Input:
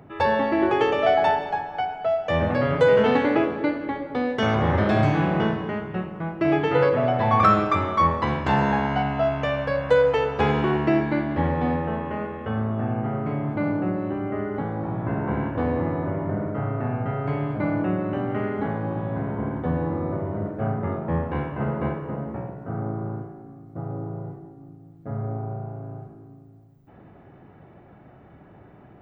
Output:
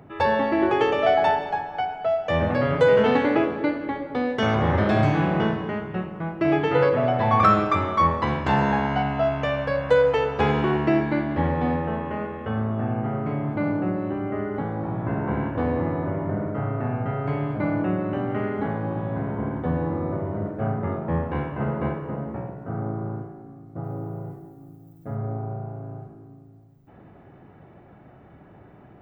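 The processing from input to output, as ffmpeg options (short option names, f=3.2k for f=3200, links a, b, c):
-filter_complex "[0:a]asettb=1/sr,asplit=3[a][b][c];[a]atrim=end=23.844[d];[b]atrim=start=23.84:end=25.15,asetpts=PTS-STARTPTS,afade=t=in:d=0.004:c=qsin,afade=t=out:st=1.306:d=0.004:c=qsin,aemphasis=mode=production:type=50fm[e];[c]atrim=start=25.146[f];[d][e]acrossfade=d=0.004:c1=hsin:c2=qsin[g];[g][f]acrossfade=d=0.004:c1=qsin:c2=hsin"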